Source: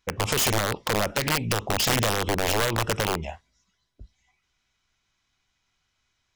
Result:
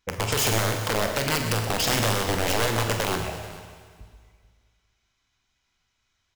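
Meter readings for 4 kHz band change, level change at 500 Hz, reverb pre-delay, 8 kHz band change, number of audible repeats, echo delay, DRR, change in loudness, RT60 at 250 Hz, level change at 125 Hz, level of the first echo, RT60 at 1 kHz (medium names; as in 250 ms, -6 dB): 0.0 dB, +0.5 dB, 18 ms, +0.5 dB, 3, 45 ms, 3.5 dB, 0.0 dB, 1.9 s, +1.5 dB, -11.0 dB, 1.9 s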